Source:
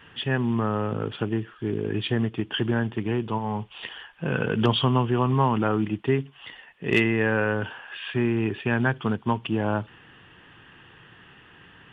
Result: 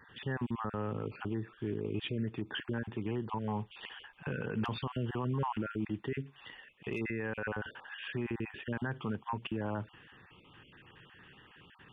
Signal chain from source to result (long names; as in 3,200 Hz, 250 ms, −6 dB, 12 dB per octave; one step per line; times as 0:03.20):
time-frequency cells dropped at random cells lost 25%
dynamic equaliser 3,600 Hz, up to −5 dB, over −49 dBFS, Q 2.1
brickwall limiter −20.5 dBFS, peak gain reduction 11.5 dB
notch filter 680 Hz, Q 12
level −5.5 dB